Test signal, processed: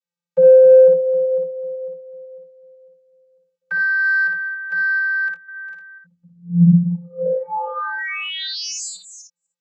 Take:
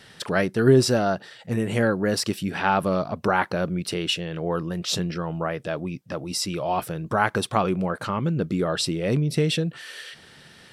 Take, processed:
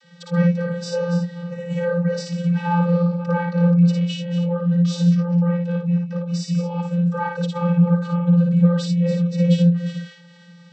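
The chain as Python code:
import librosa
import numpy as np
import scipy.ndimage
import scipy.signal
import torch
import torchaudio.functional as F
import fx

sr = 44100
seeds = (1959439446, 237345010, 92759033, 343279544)

p1 = fx.reverse_delay(x, sr, ms=249, wet_db=-11)
p2 = fx.high_shelf(p1, sr, hz=2900.0, db=8.0)
p3 = fx.room_early_taps(p2, sr, ms=(56, 78), db=(-3.5, -13.0))
p4 = 10.0 ** (-14.0 / 20.0) * np.tanh(p3 / 10.0 ** (-14.0 / 20.0))
p5 = p3 + (p4 * librosa.db_to_amplitude(-4.0))
y = fx.vocoder(p5, sr, bands=32, carrier='square', carrier_hz=173.0)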